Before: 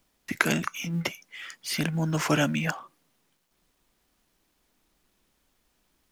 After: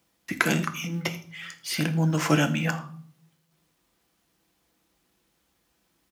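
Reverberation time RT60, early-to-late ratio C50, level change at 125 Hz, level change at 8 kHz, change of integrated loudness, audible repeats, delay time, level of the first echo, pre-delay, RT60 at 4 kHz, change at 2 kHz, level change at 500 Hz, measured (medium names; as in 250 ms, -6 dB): 0.50 s, 13.5 dB, +3.5 dB, +0.5 dB, +1.5 dB, 1, 81 ms, -19.5 dB, 4 ms, 0.45 s, +1.0 dB, +1.0 dB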